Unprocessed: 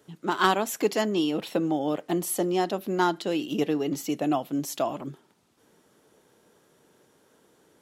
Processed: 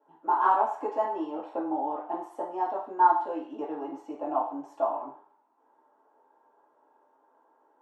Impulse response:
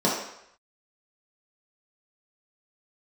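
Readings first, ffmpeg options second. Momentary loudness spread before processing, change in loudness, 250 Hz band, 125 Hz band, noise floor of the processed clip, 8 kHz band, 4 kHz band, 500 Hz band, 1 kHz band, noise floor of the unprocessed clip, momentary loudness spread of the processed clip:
6 LU, -2.0 dB, -9.5 dB, under -25 dB, -67 dBFS, under -30 dB, under -20 dB, -5.0 dB, +4.5 dB, -64 dBFS, 14 LU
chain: -filter_complex "[0:a]bandpass=f=890:t=q:w=4.3:csg=0[a];[1:a]atrim=start_sample=2205,asetrate=66150,aresample=44100[b];[a][b]afir=irnorm=-1:irlink=0,volume=-8.5dB"

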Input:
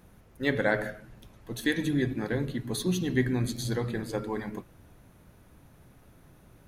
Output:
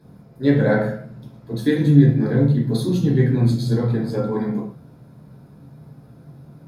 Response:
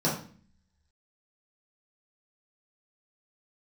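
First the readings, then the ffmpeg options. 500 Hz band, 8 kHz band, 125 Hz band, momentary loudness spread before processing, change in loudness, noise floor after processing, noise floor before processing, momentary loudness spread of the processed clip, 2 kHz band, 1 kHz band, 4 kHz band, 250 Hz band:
+9.0 dB, n/a, +15.5 dB, 11 LU, +11.0 dB, -47 dBFS, -57 dBFS, 12 LU, +1.0 dB, +5.0 dB, +1.0 dB, +11.5 dB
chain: -filter_complex "[1:a]atrim=start_sample=2205,atrim=end_sample=6174,asetrate=39690,aresample=44100[a];[0:a][a]afir=irnorm=-1:irlink=0,volume=-7.5dB"

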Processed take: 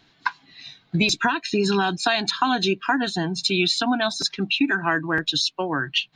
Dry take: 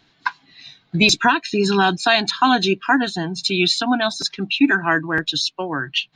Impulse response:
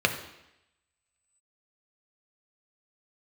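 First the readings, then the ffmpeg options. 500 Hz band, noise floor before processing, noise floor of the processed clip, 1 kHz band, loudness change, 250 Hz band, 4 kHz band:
-3.5 dB, -61 dBFS, -61 dBFS, -4.5 dB, -4.0 dB, -4.0 dB, -3.0 dB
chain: -af "acompressor=threshold=-17dB:ratio=6"

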